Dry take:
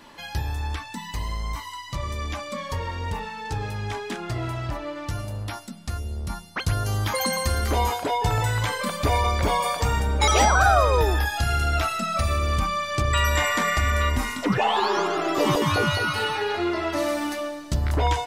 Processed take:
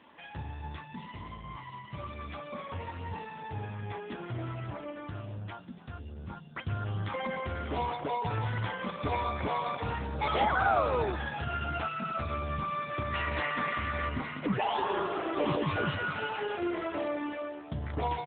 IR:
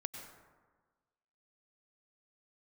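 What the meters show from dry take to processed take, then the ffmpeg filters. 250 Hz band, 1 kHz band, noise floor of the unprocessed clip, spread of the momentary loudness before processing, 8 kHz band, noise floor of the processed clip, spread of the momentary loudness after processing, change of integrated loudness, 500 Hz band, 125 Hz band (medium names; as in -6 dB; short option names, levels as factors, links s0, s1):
-7.0 dB, -8.0 dB, -39 dBFS, 11 LU, under -40 dB, -48 dBFS, 13 LU, -9.0 dB, -8.0 dB, -11.0 dB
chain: -filter_complex "[0:a]asplit=5[s0][s1][s2][s3][s4];[s1]adelay=287,afreqshift=76,volume=0.158[s5];[s2]adelay=574,afreqshift=152,volume=0.0716[s6];[s3]adelay=861,afreqshift=228,volume=0.032[s7];[s4]adelay=1148,afreqshift=304,volume=0.0145[s8];[s0][s5][s6][s7][s8]amix=inputs=5:normalize=0,volume=0.447" -ar 8000 -c:a libopencore_amrnb -b:a 7950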